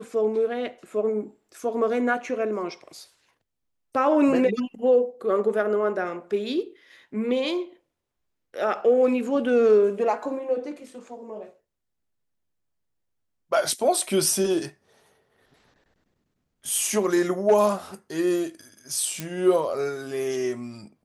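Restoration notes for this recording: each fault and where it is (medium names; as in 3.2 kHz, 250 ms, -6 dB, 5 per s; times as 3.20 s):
19.20 s: pop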